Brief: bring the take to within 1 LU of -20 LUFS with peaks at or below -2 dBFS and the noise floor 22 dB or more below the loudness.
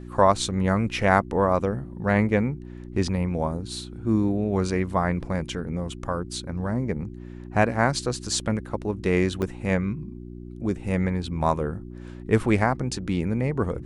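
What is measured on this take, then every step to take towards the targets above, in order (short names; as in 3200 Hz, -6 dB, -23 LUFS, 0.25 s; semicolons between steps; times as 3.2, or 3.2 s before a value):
dropouts 1; longest dropout 3.1 ms; hum 60 Hz; harmonics up to 360 Hz; hum level -36 dBFS; loudness -25.5 LUFS; peak -4.0 dBFS; loudness target -20.0 LUFS
-> interpolate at 9.42, 3.1 ms; de-hum 60 Hz, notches 6; gain +5.5 dB; limiter -2 dBFS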